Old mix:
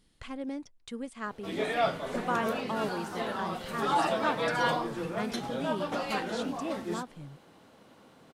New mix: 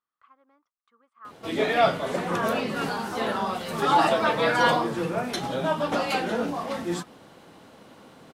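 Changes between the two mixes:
speech: add resonant band-pass 1,200 Hz, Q 9.7
background +7.0 dB

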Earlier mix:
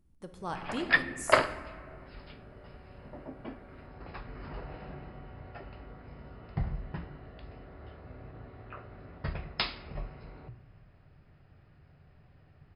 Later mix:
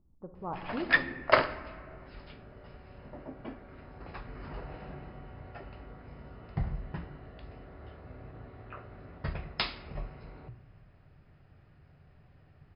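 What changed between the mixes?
speech: add Butterworth low-pass 1,200 Hz 36 dB per octave
master: add parametric band 10,000 Hz −8 dB 0.74 octaves

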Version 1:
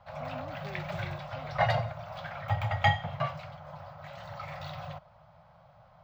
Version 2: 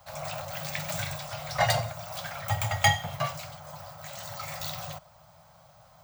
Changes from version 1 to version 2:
speech: add high-pass filter 1,300 Hz 12 dB per octave
master: remove high-frequency loss of the air 330 metres

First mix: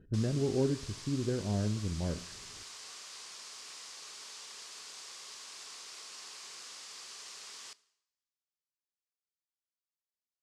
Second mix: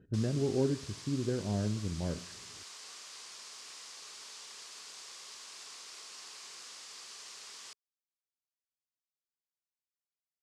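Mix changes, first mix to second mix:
background: send off
master: add high-pass filter 80 Hz

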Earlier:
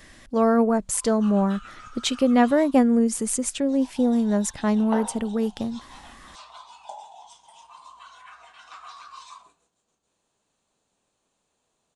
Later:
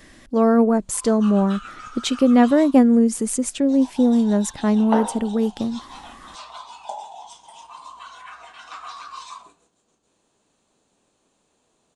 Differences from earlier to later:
background +6.0 dB
master: add parametric band 300 Hz +5.5 dB 1.4 octaves

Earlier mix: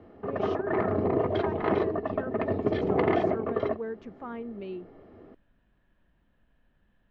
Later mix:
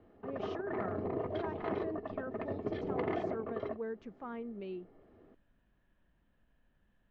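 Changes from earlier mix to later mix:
speech −4.5 dB
background −10.5 dB

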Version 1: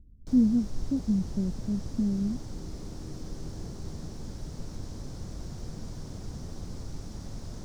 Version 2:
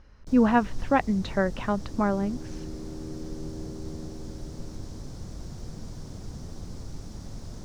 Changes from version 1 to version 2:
speech: remove inverse Chebyshev low-pass filter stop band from 1,300 Hz, stop band 70 dB
second sound +10.0 dB

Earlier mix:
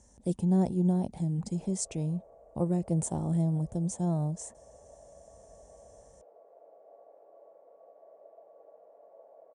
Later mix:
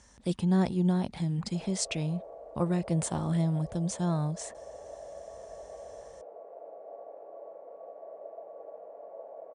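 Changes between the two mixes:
speech: add flat-topped bell 2,300 Hz +14 dB 2.5 octaves
background +10.0 dB

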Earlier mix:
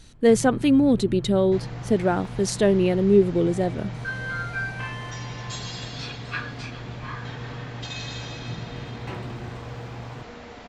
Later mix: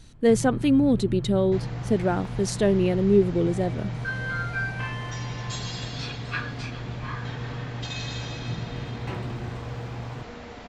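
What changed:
speech −3.0 dB
master: add low-shelf EQ 190 Hz +3.5 dB

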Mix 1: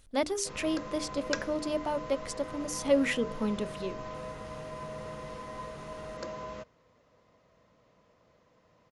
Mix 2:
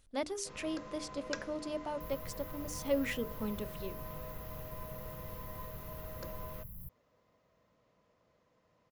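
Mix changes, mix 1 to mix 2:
speech −7.0 dB
first sound −7.0 dB
second sound: unmuted

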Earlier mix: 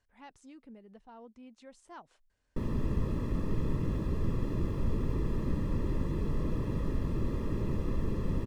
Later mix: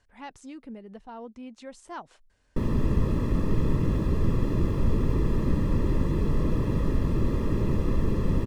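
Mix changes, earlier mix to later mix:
speech +10.0 dB
background +7.0 dB

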